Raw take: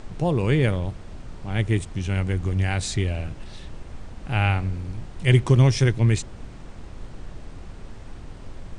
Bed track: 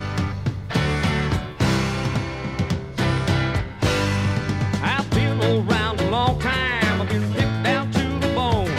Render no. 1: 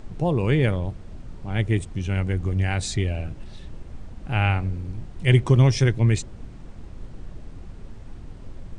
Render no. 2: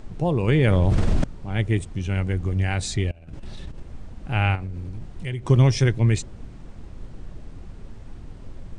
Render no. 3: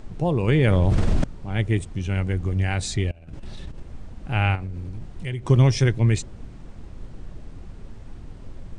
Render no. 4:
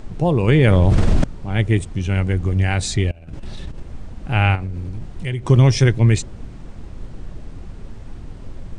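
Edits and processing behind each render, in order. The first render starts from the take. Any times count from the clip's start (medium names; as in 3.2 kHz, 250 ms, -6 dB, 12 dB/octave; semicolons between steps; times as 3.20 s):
noise reduction 6 dB, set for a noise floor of -41 dBFS
0.48–1.24 s: level flattener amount 100%; 3.11–3.80 s: compressor with a negative ratio -35 dBFS, ratio -0.5; 4.55–5.50 s: compression, threshold -27 dBFS
no audible change
trim +5 dB; peak limiter -3 dBFS, peak gain reduction 2 dB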